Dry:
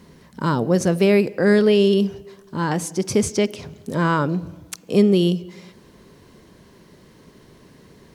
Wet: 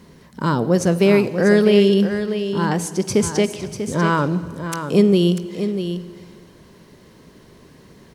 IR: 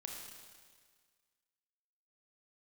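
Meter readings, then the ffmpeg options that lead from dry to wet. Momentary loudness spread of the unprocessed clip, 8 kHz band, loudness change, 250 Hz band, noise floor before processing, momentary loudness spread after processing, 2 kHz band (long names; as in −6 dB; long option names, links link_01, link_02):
12 LU, +2.0 dB, +1.0 dB, +2.0 dB, −51 dBFS, 12 LU, +2.0 dB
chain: -filter_complex "[0:a]aecho=1:1:643:0.355,asplit=2[link_01][link_02];[1:a]atrim=start_sample=2205,asetrate=32193,aresample=44100[link_03];[link_02][link_03]afir=irnorm=-1:irlink=0,volume=-12.5dB[link_04];[link_01][link_04]amix=inputs=2:normalize=0"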